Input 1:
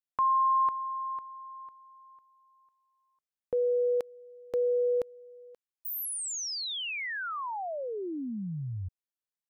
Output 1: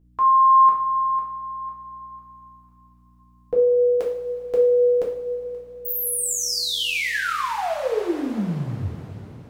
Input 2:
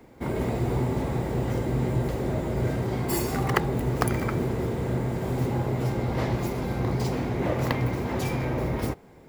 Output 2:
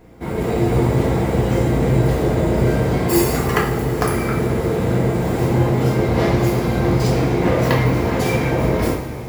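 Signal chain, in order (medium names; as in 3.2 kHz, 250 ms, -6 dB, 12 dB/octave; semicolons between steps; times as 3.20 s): level rider gain up to 5 dB; hum 60 Hz, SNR 30 dB; two-slope reverb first 0.5 s, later 4.4 s, from -16 dB, DRR -4 dB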